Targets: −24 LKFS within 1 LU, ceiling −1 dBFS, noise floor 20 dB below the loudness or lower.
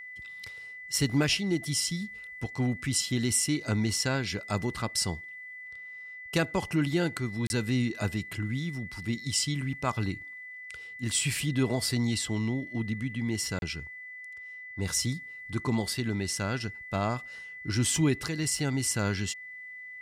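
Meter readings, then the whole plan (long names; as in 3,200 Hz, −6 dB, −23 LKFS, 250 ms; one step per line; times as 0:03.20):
number of dropouts 2; longest dropout 31 ms; interfering tone 2,000 Hz; level of the tone −41 dBFS; integrated loudness −30.0 LKFS; sample peak −14.0 dBFS; target loudness −24.0 LKFS
→ repair the gap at 0:07.47/0:13.59, 31 ms
notch filter 2,000 Hz, Q 30
level +6 dB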